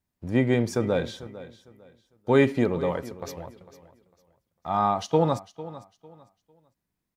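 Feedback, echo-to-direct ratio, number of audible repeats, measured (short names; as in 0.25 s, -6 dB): 26%, -16.0 dB, 2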